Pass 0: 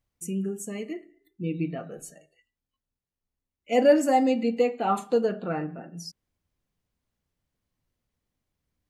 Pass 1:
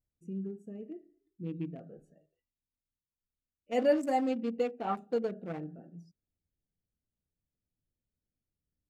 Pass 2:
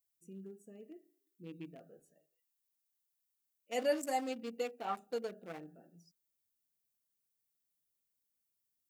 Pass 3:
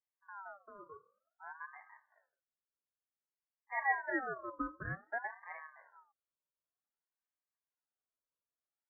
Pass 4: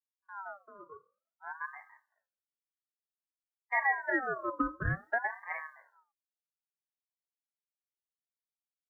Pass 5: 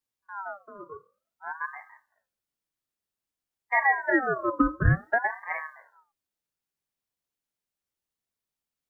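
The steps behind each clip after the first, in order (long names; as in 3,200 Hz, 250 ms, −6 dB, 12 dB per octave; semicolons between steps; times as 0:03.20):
adaptive Wiener filter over 41 samples; level −7.5 dB
RIAA equalisation recording; level −4 dB
Chebyshev band-pass filter 130–910 Hz, order 5; ring modulator whose carrier an LFO sweeps 1,100 Hz, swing 30%, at 0.54 Hz; level +2.5 dB
downward compressor 8 to 1, threshold −39 dBFS, peak gain reduction 13 dB; multiband upward and downward expander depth 100%; level +9 dB
low-shelf EQ 410 Hz +7.5 dB; level +5.5 dB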